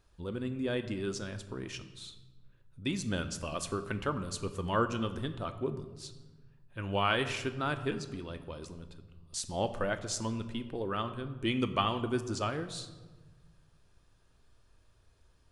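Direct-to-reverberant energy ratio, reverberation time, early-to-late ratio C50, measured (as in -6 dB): 8.5 dB, 1.3 s, 12.0 dB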